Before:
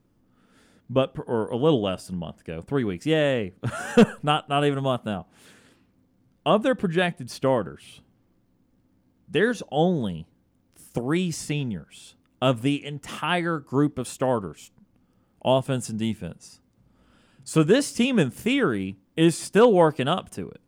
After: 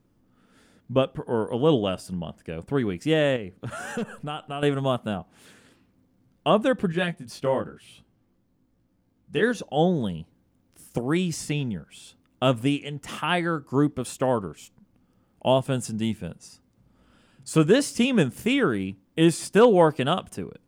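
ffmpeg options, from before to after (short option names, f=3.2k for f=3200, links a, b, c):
-filter_complex "[0:a]asettb=1/sr,asplit=3[a][b][c];[a]atrim=end=3.364[d];[b]atrim=start=3.36:end=4.63,asetpts=PTS-STARTPTS,afade=t=in:d=0.004:c=qsin,afade=t=out:st=1.266:d=0.004:c=qsin,acompressor=threshold=-31dB:ratio=3:attack=3.2:release=140:knee=1:detection=peak[e];[c]atrim=start=4.626[f];[d][e]acrossfade=d=0.004:c1=hsin:c2=qsin[g];[g][f]acrossfade=d=0.004:c1=qsin:c2=hsin,asettb=1/sr,asplit=3[h][i][j];[h]atrim=end=6.924[k];[i]atrim=start=6.92:end=9.43,asetpts=PTS-STARTPTS,afade=t=in:d=0.004:c=qsin,afade=t=out:st=2.506:d=0.004:c=qsin,flanger=delay=17:depth=3.8:speed=1[l];[j]atrim=start=9.426[m];[k][l]acrossfade=d=0.004:c1=hsin:c2=qsin[n];[n][m]acrossfade=d=0.004:c1=qsin:c2=hsin"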